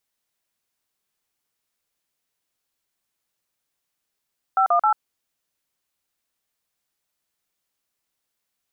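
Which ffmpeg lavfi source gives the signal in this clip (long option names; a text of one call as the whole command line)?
ffmpeg -f lavfi -i "aevalsrc='0.133*clip(min(mod(t,0.133),0.092-mod(t,0.133))/0.002,0,1)*(eq(floor(t/0.133),0)*(sin(2*PI*770*mod(t,0.133))+sin(2*PI*1336*mod(t,0.133)))+eq(floor(t/0.133),1)*(sin(2*PI*697*mod(t,0.133))+sin(2*PI*1209*mod(t,0.133)))+eq(floor(t/0.133),2)*(sin(2*PI*852*mod(t,0.133))+sin(2*PI*1336*mod(t,0.133))))':duration=0.399:sample_rate=44100" out.wav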